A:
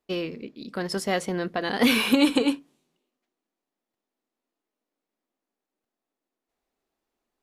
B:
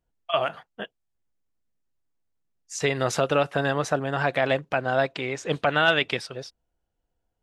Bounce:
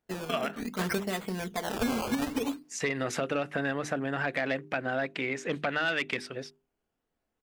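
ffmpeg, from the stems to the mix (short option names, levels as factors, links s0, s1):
-filter_complex "[0:a]equalizer=f=11000:w=0.82:g=-6,aecho=1:1:4.6:0.71,acrusher=samples=16:mix=1:aa=0.000001:lfo=1:lforange=16:lforate=0.63,volume=1.26[s0];[1:a]equalizer=f=250:t=o:w=1:g=8,equalizer=f=1000:t=o:w=1:g=-3,equalizer=f=2000:t=o:w=1:g=8,equalizer=f=4000:t=o:w=1:g=-3,asoftclip=type=tanh:threshold=0.316,lowshelf=f=67:g=-10.5,volume=0.668,asplit=2[s1][s2];[s2]apad=whole_len=327572[s3];[s0][s3]sidechaingate=range=0.398:threshold=0.00251:ratio=16:detection=peak[s4];[s4][s1]amix=inputs=2:normalize=0,bandreject=f=50:t=h:w=6,bandreject=f=100:t=h:w=6,bandreject=f=150:t=h:w=6,bandreject=f=200:t=h:w=6,bandreject=f=250:t=h:w=6,bandreject=f=300:t=h:w=6,bandreject=f=350:t=h:w=6,bandreject=f=400:t=h:w=6,acompressor=threshold=0.0398:ratio=2.5"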